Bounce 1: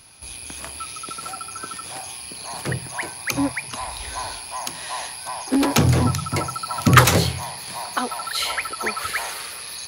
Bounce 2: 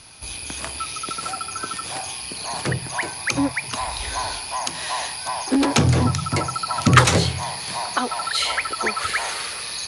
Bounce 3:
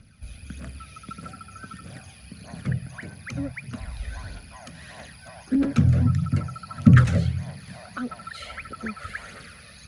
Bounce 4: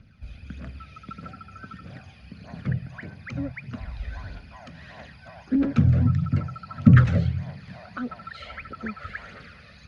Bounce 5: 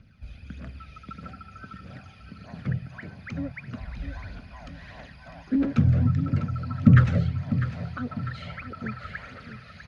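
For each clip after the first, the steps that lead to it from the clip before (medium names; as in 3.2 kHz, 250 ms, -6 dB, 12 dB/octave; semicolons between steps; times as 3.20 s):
elliptic low-pass 9.8 kHz, stop band 70 dB; in parallel at +2 dB: compression, threshold -28 dBFS, peak gain reduction 19.5 dB; on the sum: trim -1.5 dB
FFT filter 140 Hz 0 dB, 220 Hz +4 dB, 340 Hz -13 dB, 570 Hz -8 dB, 950 Hz -25 dB, 1.4 kHz -8 dB, 4.3 kHz -20 dB; phaser 1.6 Hz, delay 1.7 ms, feedback 46%; trim -2 dB
distance through air 160 m
feedback delay 650 ms, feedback 46%, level -11 dB; trim -1.5 dB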